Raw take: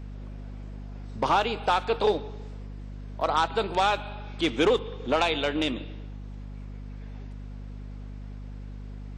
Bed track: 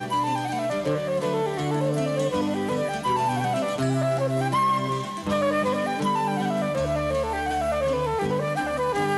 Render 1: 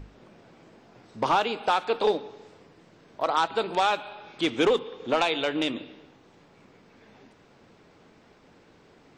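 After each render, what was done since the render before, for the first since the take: notches 50/100/150/200/250 Hz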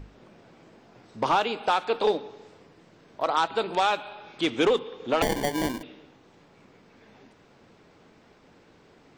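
5.22–5.83 sample-rate reducer 1300 Hz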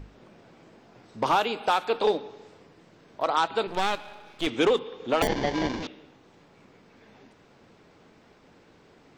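1.26–1.93 bell 12000 Hz +14 dB 0.45 oct; 3.67–4.47 half-wave gain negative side -12 dB; 5.27–5.87 delta modulation 32 kbps, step -27.5 dBFS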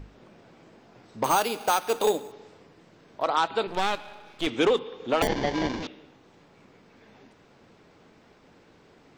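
1.24–2.32 careless resampling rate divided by 6×, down none, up hold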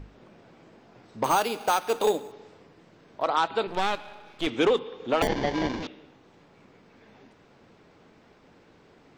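high shelf 5600 Hz -4.5 dB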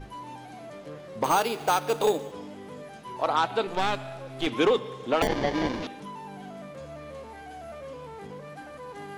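add bed track -16.5 dB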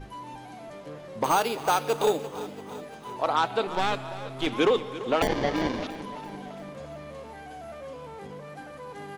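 feedback echo 0.34 s, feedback 58%, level -15 dB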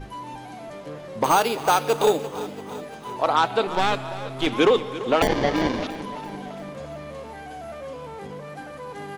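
gain +4.5 dB

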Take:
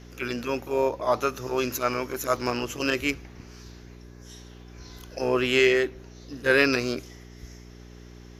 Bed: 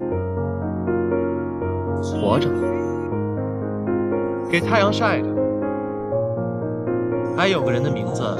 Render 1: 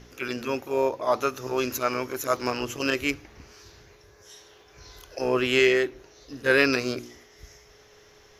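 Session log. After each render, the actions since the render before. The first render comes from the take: de-hum 60 Hz, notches 6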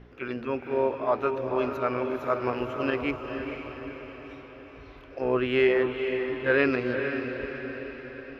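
air absorption 470 m; diffused feedback echo 0.479 s, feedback 57%, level -6.5 dB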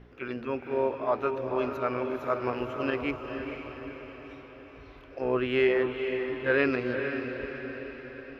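gain -2 dB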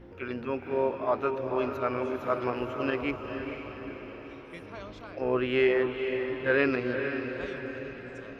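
add bed -26.5 dB

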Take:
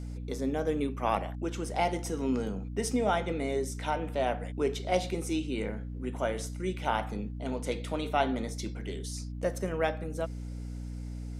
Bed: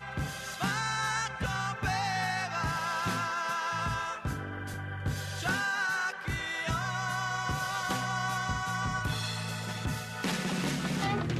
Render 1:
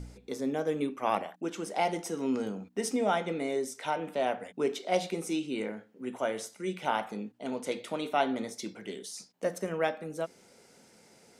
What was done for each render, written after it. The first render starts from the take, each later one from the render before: de-hum 60 Hz, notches 5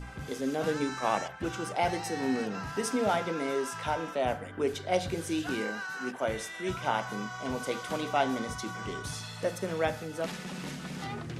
add bed -7.5 dB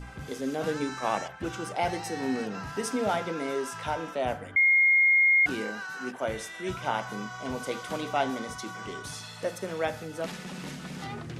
4.56–5.46 bleep 2140 Hz -17.5 dBFS; 8.3–9.94 low shelf 120 Hz -9.5 dB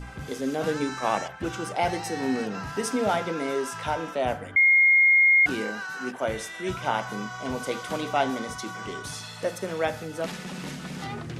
gain +3 dB

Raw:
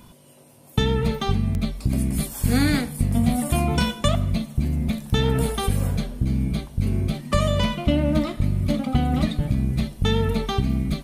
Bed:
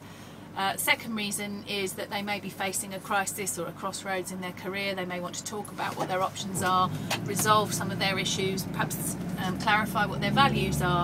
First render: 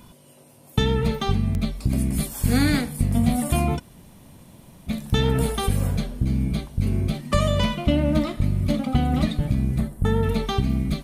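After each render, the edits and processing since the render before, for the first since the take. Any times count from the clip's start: 3.77–4.89 room tone, crossfade 0.06 s; 9.78–10.23 band shelf 3800 Hz -13 dB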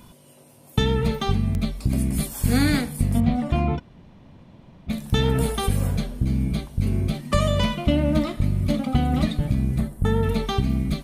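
3.2–4.9 air absorption 210 m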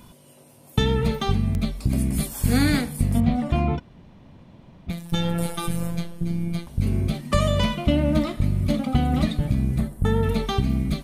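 4.9–6.67 robotiser 170 Hz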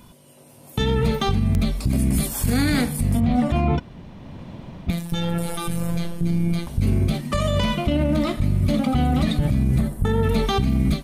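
AGC gain up to 11.5 dB; limiter -11.5 dBFS, peak gain reduction 10 dB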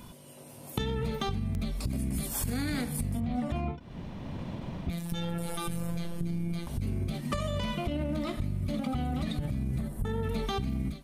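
compressor 10:1, threshold -28 dBFS, peak gain reduction 13 dB; ending taper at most 160 dB/s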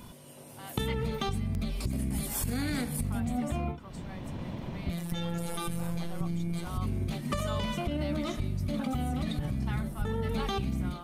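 add bed -19 dB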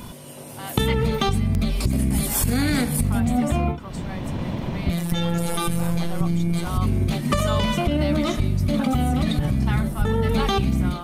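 gain +10.5 dB

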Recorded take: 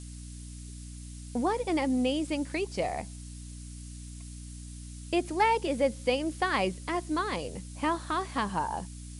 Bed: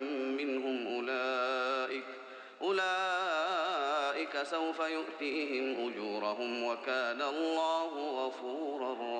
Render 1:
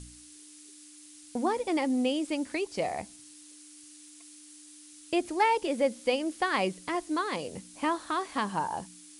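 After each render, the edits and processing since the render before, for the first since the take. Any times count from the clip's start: de-hum 60 Hz, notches 4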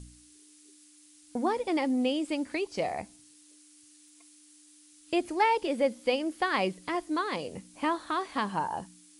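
noise print and reduce 6 dB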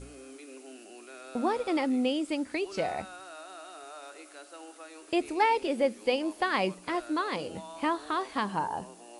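add bed -13 dB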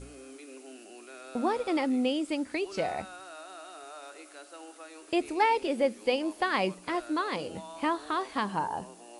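nothing audible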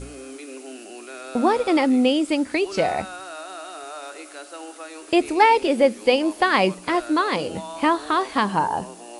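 gain +9.5 dB

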